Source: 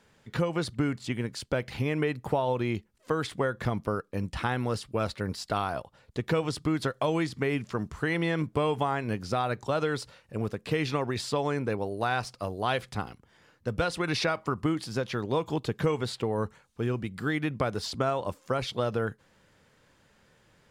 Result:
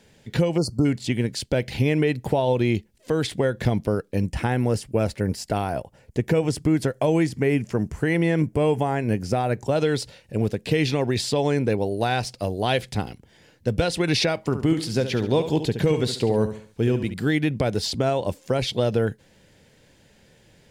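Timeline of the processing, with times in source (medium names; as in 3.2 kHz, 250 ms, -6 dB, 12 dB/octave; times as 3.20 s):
0.58–0.85 s: spectral selection erased 1.4–4.2 kHz
4.26–9.76 s: peaking EQ 3.8 kHz -11.5 dB 0.7 oct
14.45–17.14 s: feedback delay 70 ms, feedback 38%, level -10.5 dB
whole clip: peaking EQ 1.2 kHz -14 dB 0.7 oct; loudness maximiser +17.5 dB; trim -9 dB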